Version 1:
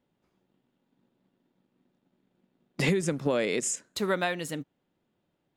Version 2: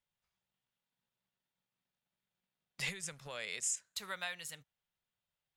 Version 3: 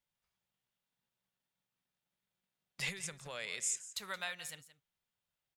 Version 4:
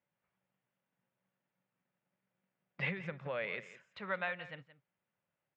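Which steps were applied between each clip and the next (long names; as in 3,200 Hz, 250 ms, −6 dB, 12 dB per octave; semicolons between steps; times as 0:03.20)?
guitar amp tone stack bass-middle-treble 10-0-10; level −4 dB
single-tap delay 173 ms −15.5 dB
loudspeaker in its box 110–2,400 Hz, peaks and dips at 130 Hz +4 dB, 190 Hz +5 dB, 300 Hz +4 dB, 550 Hz +6 dB; level +4.5 dB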